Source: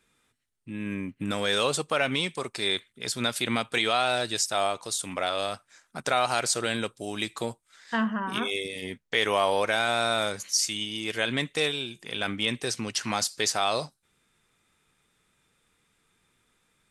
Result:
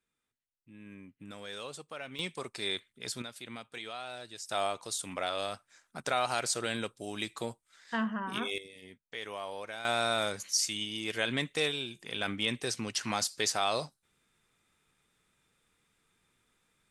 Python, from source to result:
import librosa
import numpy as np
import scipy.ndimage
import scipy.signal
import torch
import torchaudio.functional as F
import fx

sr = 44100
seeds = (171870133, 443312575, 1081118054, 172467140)

y = fx.gain(x, sr, db=fx.steps((0.0, -17.0), (2.19, -7.0), (3.22, -17.0), (4.49, -5.5), (8.58, -16.0), (9.85, -4.0)))